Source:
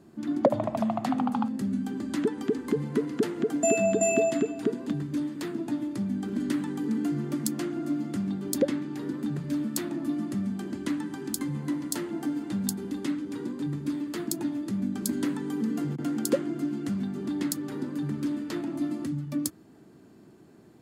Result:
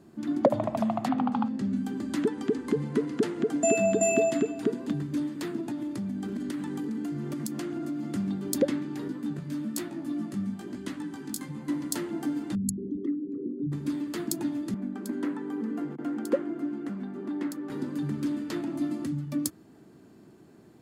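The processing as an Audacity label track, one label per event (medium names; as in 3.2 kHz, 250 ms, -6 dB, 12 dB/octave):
1.080000	1.750000	low-pass 3.9 kHz -> 6.8 kHz
2.300000	3.750000	peaking EQ 14 kHz -14 dB 0.3 oct
5.600000	8.030000	compression, threshold -29 dBFS
9.080000	11.690000	chorus 1.1 Hz, delay 15.5 ms, depth 4.1 ms
12.550000	13.720000	resonances exaggerated exponent 3
14.740000	17.700000	three-band isolator lows -22 dB, under 210 Hz, highs -14 dB, over 2.2 kHz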